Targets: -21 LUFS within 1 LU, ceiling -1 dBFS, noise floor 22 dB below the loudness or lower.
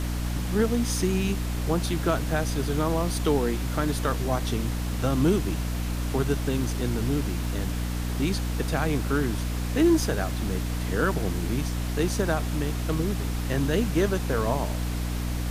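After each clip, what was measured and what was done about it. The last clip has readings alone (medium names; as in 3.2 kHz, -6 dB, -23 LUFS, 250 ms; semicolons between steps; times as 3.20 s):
hum 60 Hz; highest harmonic 300 Hz; hum level -26 dBFS; noise floor -29 dBFS; noise floor target -49 dBFS; loudness -26.5 LUFS; peak level -10.5 dBFS; loudness target -21.0 LUFS
-> de-hum 60 Hz, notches 5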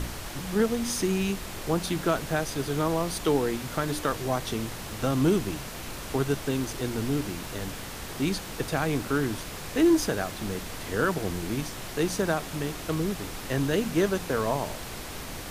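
hum not found; noise floor -38 dBFS; noise floor target -51 dBFS
-> noise print and reduce 13 dB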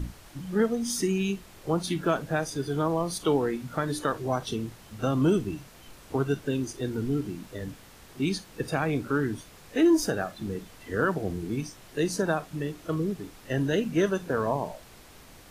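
noise floor -51 dBFS; loudness -29.0 LUFS; peak level -12.5 dBFS; loudness target -21.0 LUFS
-> trim +8 dB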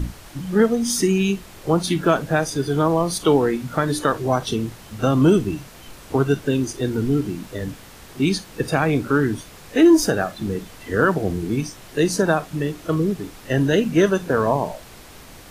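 loudness -21.0 LUFS; peak level -4.5 dBFS; noise floor -43 dBFS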